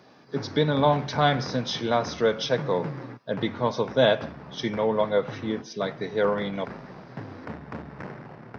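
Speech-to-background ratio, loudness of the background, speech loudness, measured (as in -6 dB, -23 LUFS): 14.0 dB, -40.0 LUFS, -26.0 LUFS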